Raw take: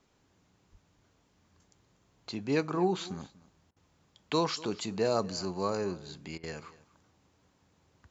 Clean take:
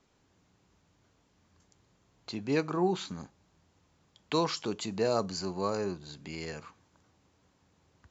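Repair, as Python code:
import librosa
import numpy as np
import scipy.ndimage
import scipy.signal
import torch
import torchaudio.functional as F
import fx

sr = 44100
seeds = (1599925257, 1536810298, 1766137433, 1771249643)

y = fx.fix_deplosive(x, sr, at_s=(0.71,))
y = fx.fix_interpolate(y, sr, at_s=(3.71, 6.38), length_ms=53.0)
y = fx.fix_echo_inverse(y, sr, delay_ms=242, level_db=-20.0)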